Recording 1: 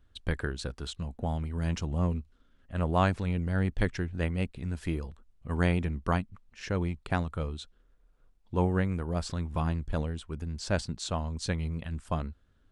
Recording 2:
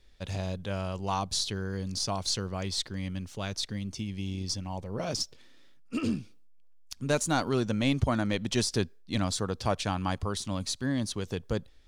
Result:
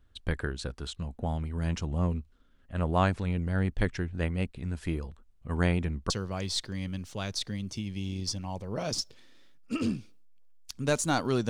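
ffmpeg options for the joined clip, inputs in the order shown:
-filter_complex "[0:a]apad=whole_dur=11.49,atrim=end=11.49,atrim=end=6.102[s0];[1:a]atrim=start=2.318:end=7.71[s1];[s0][s1]acrossfade=d=0.004:c1=hsin:c2=hsin"

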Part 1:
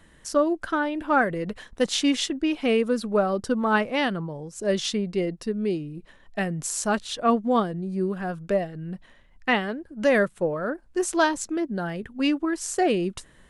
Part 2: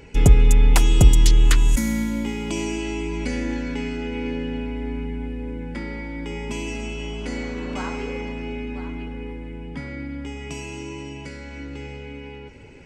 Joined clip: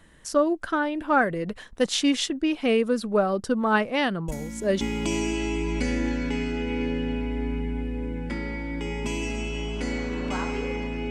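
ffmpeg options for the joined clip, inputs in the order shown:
-filter_complex "[1:a]asplit=2[s0][s1];[0:a]apad=whole_dur=11.1,atrim=end=11.1,atrim=end=4.812[s2];[s1]atrim=start=2.258:end=8.55[s3];[s0]atrim=start=1.73:end=2.26,asetpts=PTS-STARTPTS,volume=0.211,afade=t=in:d=0.004:c=hsin,afade=t=out:st=0.526:d=0.004:c=hsin,adelay=4280[s4];[s2][s3]acrossfade=d=0.004:c1=hsin:c2=hsin[s5];[s5][s4]amix=inputs=2:normalize=0"

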